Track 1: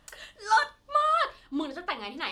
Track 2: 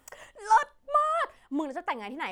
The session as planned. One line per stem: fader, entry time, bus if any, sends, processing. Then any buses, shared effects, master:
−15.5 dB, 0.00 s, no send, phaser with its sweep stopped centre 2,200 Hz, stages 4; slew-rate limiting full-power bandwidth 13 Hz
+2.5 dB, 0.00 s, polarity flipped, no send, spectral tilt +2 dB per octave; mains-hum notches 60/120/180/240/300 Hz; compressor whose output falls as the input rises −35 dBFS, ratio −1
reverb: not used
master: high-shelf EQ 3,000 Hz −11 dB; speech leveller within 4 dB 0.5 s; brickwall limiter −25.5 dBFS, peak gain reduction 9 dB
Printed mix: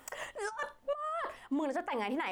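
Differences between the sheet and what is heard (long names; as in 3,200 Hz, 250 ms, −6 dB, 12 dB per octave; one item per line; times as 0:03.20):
stem 1 −15.5 dB → −22.0 dB
master: missing speech leveller within 4 dB 0.5 s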